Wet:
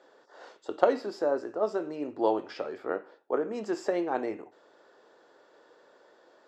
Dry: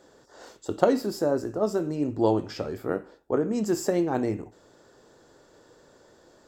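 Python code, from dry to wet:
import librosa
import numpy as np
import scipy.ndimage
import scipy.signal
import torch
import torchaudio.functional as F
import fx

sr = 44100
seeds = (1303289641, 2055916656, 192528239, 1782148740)

y = fx.bandpass_edges(x, sr, low_hz=450.0, high_hz=3400.0)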